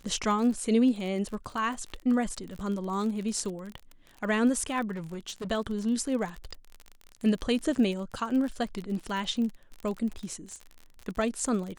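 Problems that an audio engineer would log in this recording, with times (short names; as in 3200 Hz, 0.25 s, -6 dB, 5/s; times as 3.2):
crackle 36/s -34 dBFS
4.92–5.48 clipped -32 dBFS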